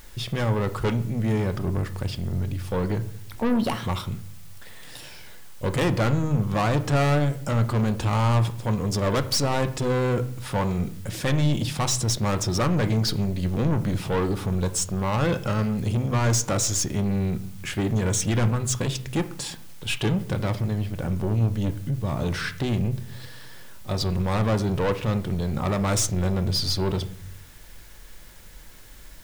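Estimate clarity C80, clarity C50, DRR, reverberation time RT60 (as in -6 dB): 18.5 dB, 15.0 dB, 9.0 dB, 0.65 s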